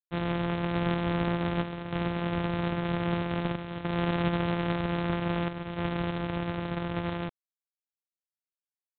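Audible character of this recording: a buzz of ramps at a fixed pitch in blocks of 256 samples; chopped level 0.52 Hz, depth 60%, duty 85%; G.726

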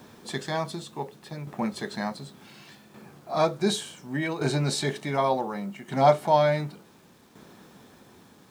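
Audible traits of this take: tremolo saw down 0.68 Hz, depth 65%; a quantiser's noise floor 10-bit, dither none

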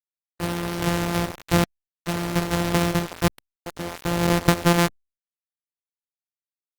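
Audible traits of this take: a buzz of ramps at a fixed pitch in blocks of 256 samples; tremolo saw up 0.61 Hz, depth 100%; a quantiser's noise floor 6-bit, dither none; Opus

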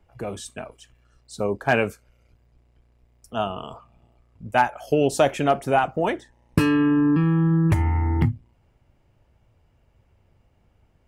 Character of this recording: noise floor -63 dBFS; spectral tilt -5.0 dB/octave

